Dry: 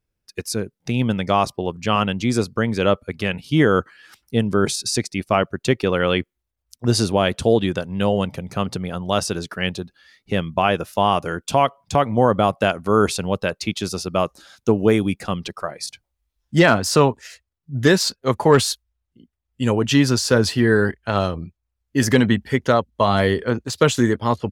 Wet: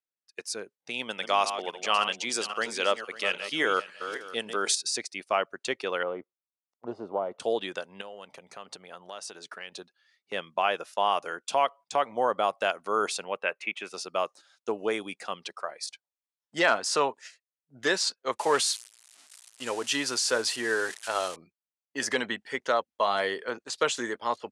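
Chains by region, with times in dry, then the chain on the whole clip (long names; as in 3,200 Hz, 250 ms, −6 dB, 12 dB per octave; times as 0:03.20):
0:00.90–0:04.75: feedback delay that plays each chunk backwards 273 ms, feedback 40%, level −9.5 dB + high-pass filter 150 Hz 6 dB per octave + high-shelf EQ 2,500 Hz +8 dB
0:06.03–0:07.40: de-essing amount 90% + Savitzky-Golay smoothing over 65 samples + highs frequency-modulated by the lows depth 0.15 ms
0:08.01–0:09.72: notch filter 5,100 Hz, Q 26 + downward compressor 5 to 1, threshold −28 dBFS
0:13.24–0:13.94: high-pass filter 160 Hz 6 dB per octave + high shelf with overshoot 3,300 Hz −10.5 dB, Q 3
0:18.39–0:21.36: spike at every zero crossing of −19 dBFS + notch filter 200 Hz, Q 6.4
whole clip: Butterworth low-pass 10,000 Hz 36 dB per octave; noise gate −37 dBFS, range −9 dB; high-pass filter 560 Hz 12 dB per octave; level −6 dB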